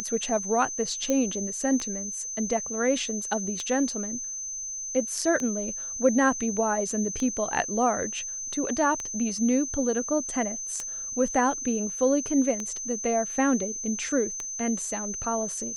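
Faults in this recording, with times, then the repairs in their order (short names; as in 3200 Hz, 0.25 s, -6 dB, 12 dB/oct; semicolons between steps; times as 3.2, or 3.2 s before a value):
tick 33 1/3 rpm -17 dBFS
tone 6200 Hz -32 dBFS
1.1 pop -13 dBFS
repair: de-click; notch 6200 Hz, Q 30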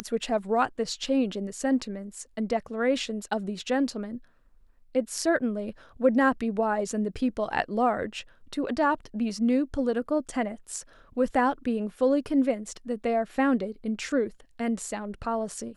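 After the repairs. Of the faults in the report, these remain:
tick 33 1/3 rpm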